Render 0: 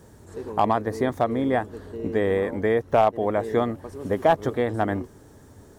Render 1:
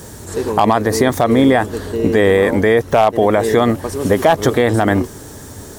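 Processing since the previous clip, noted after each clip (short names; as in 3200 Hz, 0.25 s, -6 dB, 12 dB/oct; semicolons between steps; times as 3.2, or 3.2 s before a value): high shelf 2500 Hz +10 dB; maximiser +15 dB; gain -1 dB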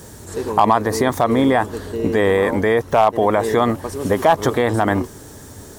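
dynamic EQ 1000 Hz, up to +7 dB, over -29 dBFS, Q 2; gain -4.5 dB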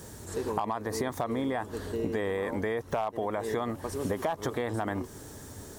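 compressor, threshold -21 dBFS, peak gain reduction 12.5 dB; gain -6.5 dB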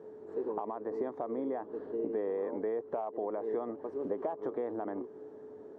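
whine 430 Hz -45 dBFS; ladder band-pass 460 Hz, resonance 25%; gain +7.5 dB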